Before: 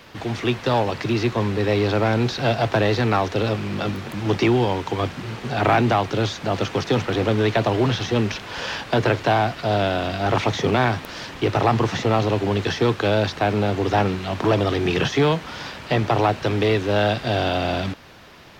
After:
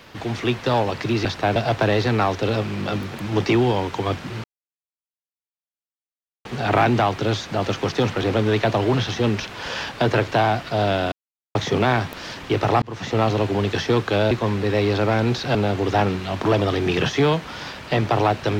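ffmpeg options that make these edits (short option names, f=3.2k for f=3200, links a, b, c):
-filter_complex "[0:a]asplit=9[a][b][c][d][e][f][g][h][i];[a]atrim=end=1.252[j];[b]atrim=start=13.228:end=13.542[k];[c]atrim=start=2.488:end=5.37,asetpts=PTS-STARTPTS,afade=t=out:st=2.878:d=0.004:c=hsin,apad=pad_dur=2.01[l];[d]atrim=start=5.37:end=10.04,asetpts=PTS-STARTPTS,afade=t=in:d=0.004:c=hsin,afade=t=out:st=4.666:d=0.004:c=hsin[m];[e]atrim=start=10.04:end=10.47,asetpts=PTS-STARTPTS,volume=0[n];[f]atrim=start=10.47:end=11.74,asetpts=PTS-STARTPTS,afade=t=in:d=0.004:c=hsin,afade=t=out:st=1.266:d=0.004:c=hsin[o];[g]atrim=start=11.74:end=13.232,asetpts=PTS-STARTPTS,afade=t=in:d=0.37[p];[h]atrim=start=1.248:end=2.492[q];[i]atrim=start=13.538[r];[j][k]acrossfade=d=0.004:c1=hsin:c2=hsin[s];[l][m][n][o][p]concat=n=5:v=0:a=1[t];[s][t]acrossfade=d=0.004:c1=hsin:c2=hsin[u];[u][q]acrossfade=d=0.004:c1=hsin:c2=hsin[v];[v][r]acrossfade=d=0.004:c1=hsin:c2=hsin"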